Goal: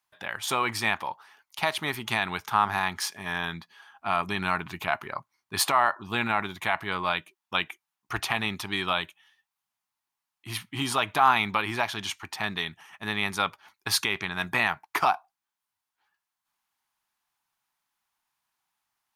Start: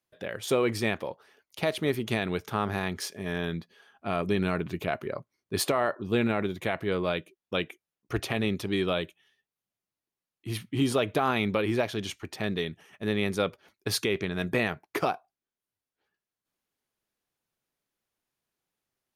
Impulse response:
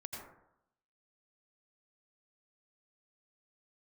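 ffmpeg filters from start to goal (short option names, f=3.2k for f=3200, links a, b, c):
-af "lowshelf=f=670:t=q:w=3:g=-9.5,volume=4.5dB"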